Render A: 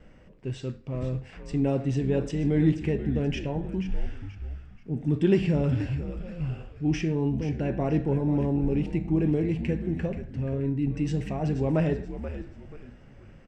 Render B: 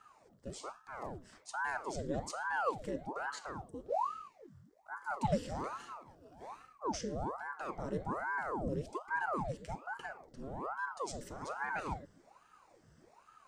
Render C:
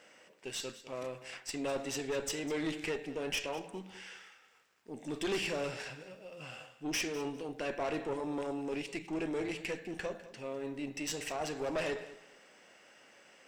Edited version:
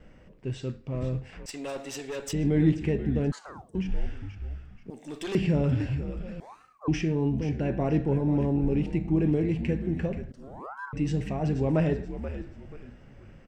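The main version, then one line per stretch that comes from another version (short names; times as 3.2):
A
1.46–2.33 from C
3.32–3.75 from B
4.9–5.35 from C
6.4–6.88 from B
10.32–10.93 from B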